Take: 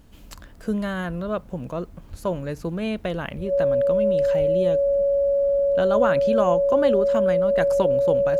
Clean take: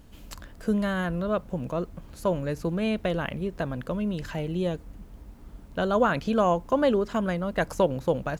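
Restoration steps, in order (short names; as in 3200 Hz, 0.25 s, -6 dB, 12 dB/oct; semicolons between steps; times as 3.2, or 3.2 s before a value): notch 560 Hz, Q 30; 2.1–2.22 HPF 140 Hz 24 dB/oct; 3.36–3.48 HPF 140 Hz 24 dB/oct; 4.38–4.5 HPF 140 Hz 24 dB/oct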